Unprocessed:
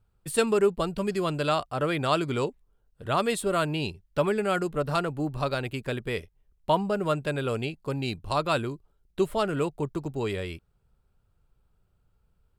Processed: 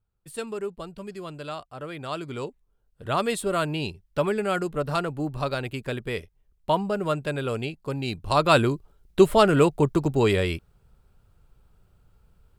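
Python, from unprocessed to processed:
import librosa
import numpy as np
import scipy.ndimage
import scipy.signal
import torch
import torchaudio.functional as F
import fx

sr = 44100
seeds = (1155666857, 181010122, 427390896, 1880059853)

y = fx.gain(x, sr, db=fx.line((1.89, -9.5), (3.08, 0.5), (8.04, 0.5), (8.61, 9.0)))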